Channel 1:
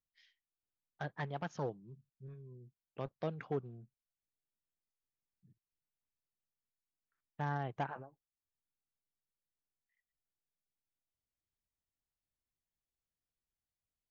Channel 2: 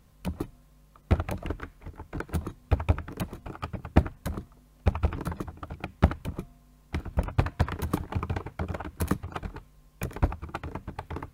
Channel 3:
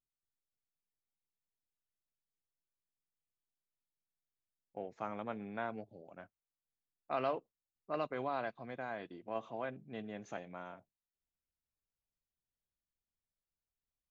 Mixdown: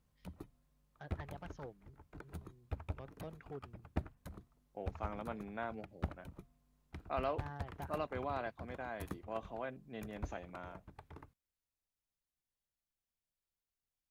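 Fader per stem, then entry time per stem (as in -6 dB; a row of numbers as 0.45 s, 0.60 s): -10.5 dB, -17.5 dB, -2.0 dB; 0.00 s, 0.00 s, 0.00 s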